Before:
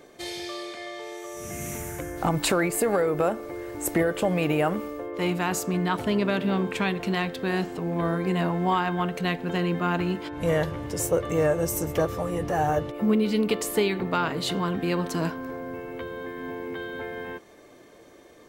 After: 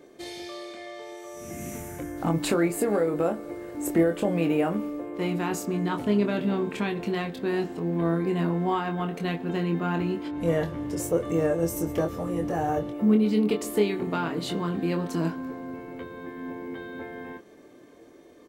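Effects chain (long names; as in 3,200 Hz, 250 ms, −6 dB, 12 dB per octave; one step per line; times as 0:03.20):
parametric band 290 Hz +8.5 dB 1.5 octaves
double-tracking delay 24 ms −6 dB
on a send: convolution reverb RT60 5.7 s, pre-delay 108 ms, DRR 23.5 dB
on the sum: level −6.5 dB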